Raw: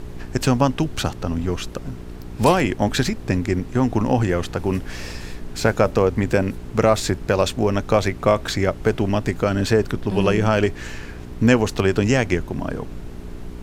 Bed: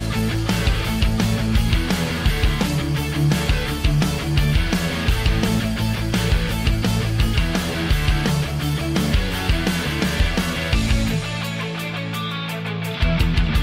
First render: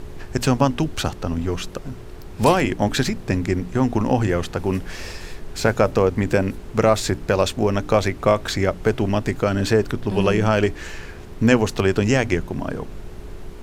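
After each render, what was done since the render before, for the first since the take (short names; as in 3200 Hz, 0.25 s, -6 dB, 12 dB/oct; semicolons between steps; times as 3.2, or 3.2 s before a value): de-hum 60 Hz, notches 5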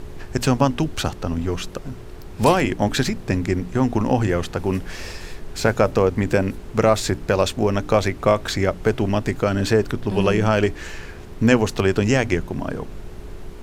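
nothing audible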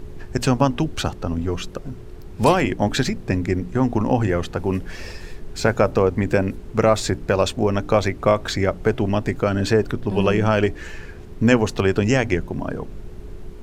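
denoiser 6 dB, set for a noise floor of -37 dBFS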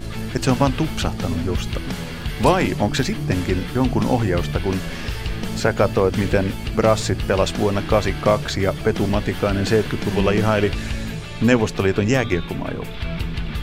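add bed -8 dB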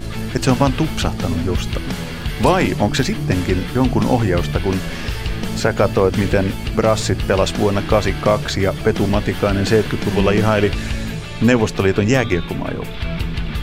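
gain +3 dB; limiter -2 dBFS, peak gain reduction 3 dB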